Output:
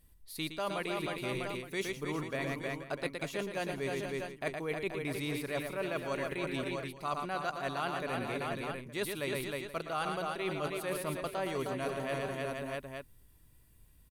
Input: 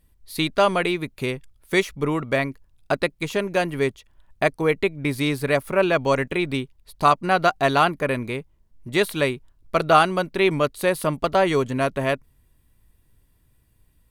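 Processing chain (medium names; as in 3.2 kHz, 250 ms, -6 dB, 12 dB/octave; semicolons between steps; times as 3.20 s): treble shelf 4.6 kHz +5 dB; multi-tap echo 116/312/479/649/869 ms -8.5/-8/-15.5/-13/-18 dB; reverse; compression 6:1, threshold -30 dBFS, peak gain reduction 18.5 dB; reverse; trim -3.5 dB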